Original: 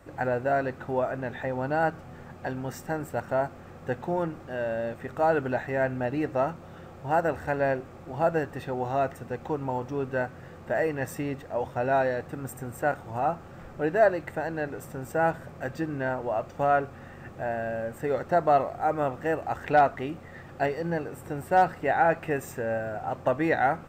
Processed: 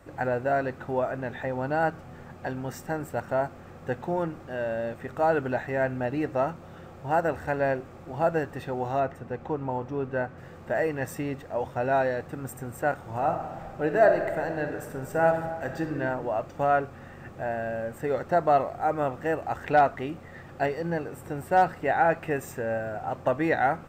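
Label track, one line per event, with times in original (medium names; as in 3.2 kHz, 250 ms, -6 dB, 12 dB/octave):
9.000000	10.380000	treble shelf 4.3 kHz -11.5 dB
12.950000	16.000000	reverb throw, RT60 1.4 s, DRR 5 dB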